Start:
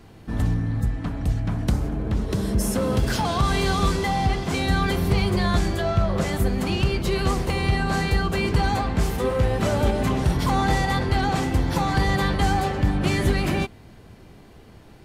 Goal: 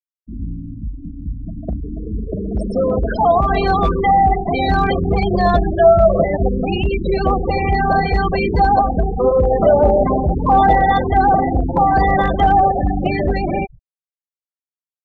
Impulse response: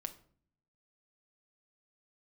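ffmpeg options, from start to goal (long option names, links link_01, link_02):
-filter_complex "[0:a]equalizer=frequency=120:width=3:gain=-11.5,asplit=2[link_01][link_02];[link_02]asplit=5[link_03][link_04][link_05][link_06][link_07];[link_03]adelay=147,afreqshift=-41,volume=-16dB[link_08];[link_04]adelay=294,afreqshift=-82,volume=-21.5dB[link_09];[link_05]adelay=441,afreqshift=-123,volume=-27dB[link_10];[link_06]adelay=588,afreqshift=-164,volume=-32.5dB[link_11];[link_07]adelay=735,afreqshift=-205,volume=-38.1dB[link_12];[link_08][link_09][link_10][link_11][link_12]amix=inputs=5:normalize=0[link_13];[link_01][link_13]amix=inputs=2:normalize=0,acontrast=81,afftfilt=real='re*gte(hypot(re,im),0.251)':imag='im*gte(hypot(re,im),0.251)':win_size=1024:overlap=0.75,asoftclip=type=hard:threshold=-8dB,dynaudnorm=framelen=250:gausssize=21:maxgain=11.5dB,equalizer=frequency=670:width=2.1:gain=13,volume=-8dB"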